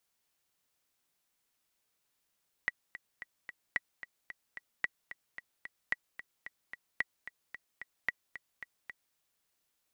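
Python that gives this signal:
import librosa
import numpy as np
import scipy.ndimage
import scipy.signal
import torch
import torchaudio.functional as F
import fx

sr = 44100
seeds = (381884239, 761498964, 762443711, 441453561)

y = fx.click_track(sr, bpm=222, beats=4, bars=6, hz=1940.0, accent_db=13.5, level_db=-16.5)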